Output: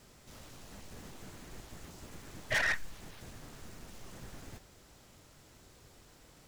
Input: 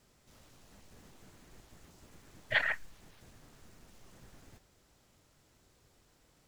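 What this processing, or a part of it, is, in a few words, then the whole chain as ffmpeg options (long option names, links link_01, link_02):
saturation between pre-emphasis and de-emphasis: -af "highshelf=frequency=9900:gain=6.5,asoftclip=type=tanh:threshold=-35dB,highshelf=frequency=9900:gain=-6.5,volume=8.5dB"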